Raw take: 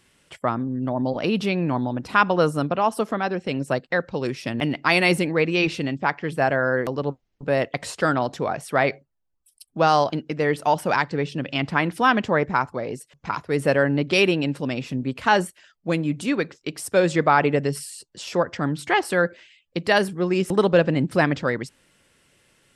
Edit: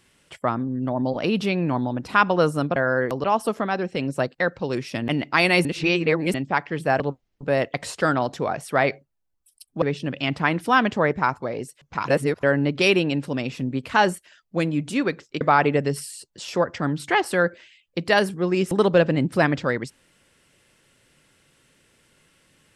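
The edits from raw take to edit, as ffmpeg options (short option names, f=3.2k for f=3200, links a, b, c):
-filter_complex "[0:a]asplit=10[a][b][c][d][e][f][g][h][i][j];[a]atrim=end=2.762[k];[b]atrim=start=6.518:end=7.002[l];[c]atrim=start=2.758:end=5.172[m];[d]atrim=start=5.168:end=5.862,asetpts=PTS-STARTPTS,areverse[n];[e]atrim=start=5.858:end=6.522[o];[f]atrim=start=6.998:end=9.822[p];[g]atrim=start=11.138:end=13.402[q];[h]atrim=start=13.398:end=13.752,asetpts=PTS-STARTPTS,areverse[r];[i]atrim=start=13.748:end=16.732[s];[j]atrim=start=17.198[t];[k][l]acrossfade=d=0.004:c1=hsin:c2=hsin[u];[u][m]acrossfade=d=0.004:c1=hsin:c2=hsin[v];[v][n]acrossfade=d=0.004:c1=hsin:c2=hsin[w];[w][o]acrossfade=d=0.004:c1=hsin:c2=hsin[x];[x][p]acrossfade=d=0.004:c1=hsin:c2=hsin[y];[y][q]acrossfade=d=0.004:c1=hsin:c2=hsin[z];[z][r]acrossfade=d=0.004:c1=hsin:c2=hsin[aa];[aa][s]acrossfade=d=0.004:c1=hsin:c2=hsin[ab];[ab][t]acrossfade=d=0.004:c1=hsin:c2=hsin"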